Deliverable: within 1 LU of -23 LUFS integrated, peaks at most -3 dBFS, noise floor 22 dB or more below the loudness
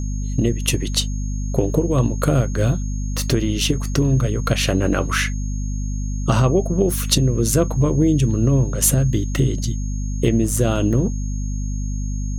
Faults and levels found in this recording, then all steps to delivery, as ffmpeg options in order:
hum 50 Hz; harmonics up to 250 Hz; hum level -21 dBFS; steady tone 6500 Hz; tone level -39 dBFS; loudness -20.0 LUFS; peak -2.5 dBFS; loudness target -23.0 LUFS
-> -af "bandreject=f=50:t=h:w=6,bandreject=f=100:t=h:w=6,bandreject=f=150:t=h:w=6,bandreject=f=200:t=h:w=6,bandreject=f=250:t=h:w=6"
-af "bandreject=f=6.5k:w=30"
-af "volume=-3dB"

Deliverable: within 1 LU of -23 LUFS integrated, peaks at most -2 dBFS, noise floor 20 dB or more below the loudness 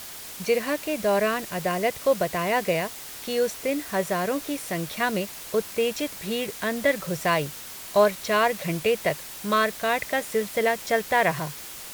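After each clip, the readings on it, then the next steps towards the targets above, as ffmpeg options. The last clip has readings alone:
noise floor -40 dBFS; noise floor target -46 dBFS; loudness -25.5 LUFS; peak -8.0 dBFS; loudness target -23.0 LUFS
-> -af "afftdn=nr=6:nf=-40"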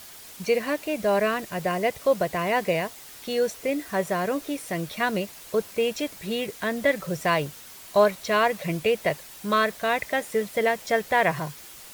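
noise floor -45 dBFS; noise floor target -46 dBFS
-> -af "afftdn=nr=6:nf=-45"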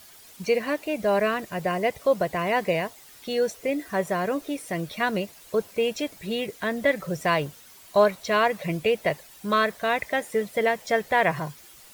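noise floor -50 dBFS; loudness -26.0 LUFS; peak -8.5 dBFS; loudness target -23.0 LUFS
-> -af "volume=3dB"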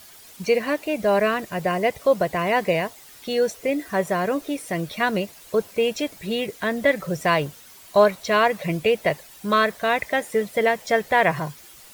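loudness -23.0 LUFS; peak -5.5 dBFS; noise floor -47 dBFS

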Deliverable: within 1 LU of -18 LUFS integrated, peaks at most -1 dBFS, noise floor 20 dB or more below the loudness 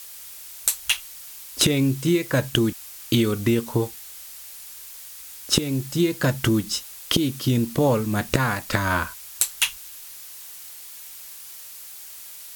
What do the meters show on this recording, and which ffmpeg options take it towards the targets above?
noise floor -41 dBFS; noise floor target -43 dBFS; loudness -23.0 LUFS; peak -3.0 dBFS; loudness target -18.0 LUFS
-> -af "afftdn=nr=6:nf=-41"
-af "volume=5dB,alimiter=limit=-1dB:level=0:latency=1"

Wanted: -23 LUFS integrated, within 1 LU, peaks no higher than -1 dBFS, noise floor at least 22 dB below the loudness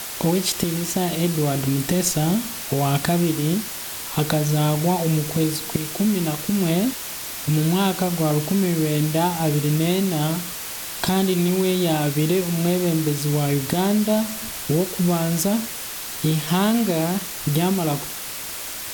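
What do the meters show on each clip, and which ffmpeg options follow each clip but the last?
noise floor -32 dBFS; noise floor target -44 dBFS; loudness -21.5 LUFS; peak -5.0 dBFS; loudness target -23.0 LUFS
-> -af "afftdn=nr=12:nf=-32"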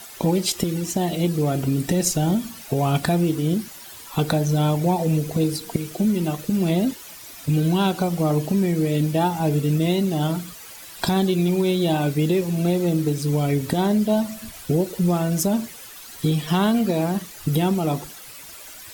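noise floor -41 dBFS; noise floor target -44 dBFS
-> -af "afftdn=nr=6:nf=-41"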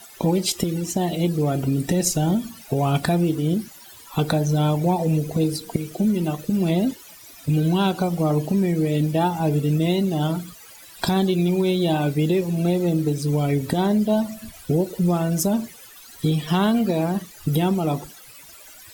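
noise floor -45 dBFS; loudness -22.0 LUFS; peak -6.0 dBFS; loudness target -23.0 LUFS
-> -af "volume=-1dB"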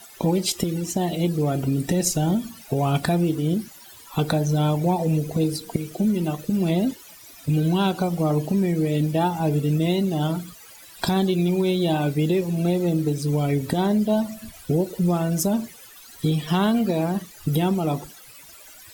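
loudness -23.0 LUFS; peak -7.0 dBFS; noise floor -46 dBFS

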